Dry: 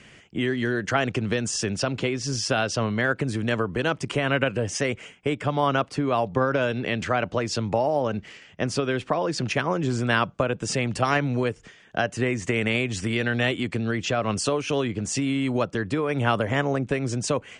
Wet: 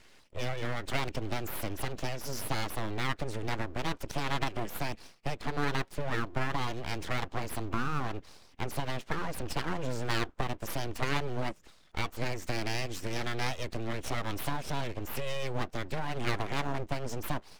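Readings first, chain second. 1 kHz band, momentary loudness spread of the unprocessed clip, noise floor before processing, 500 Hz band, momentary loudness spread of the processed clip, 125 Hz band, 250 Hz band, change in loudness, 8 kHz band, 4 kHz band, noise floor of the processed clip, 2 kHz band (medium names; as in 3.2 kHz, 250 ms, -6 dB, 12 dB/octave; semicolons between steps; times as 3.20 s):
-8.0 dB, 4 LU, -52 dBFS, -13.0 dB, 5 LU, -8.5 dB, -12.0 dB, -10.0 dB, -11.5 dB, -8.0 dB, -59 dBFS, -10.0 dB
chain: coarse spectral quantiser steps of 15 dB; full-wave rectifier; trim -6 dB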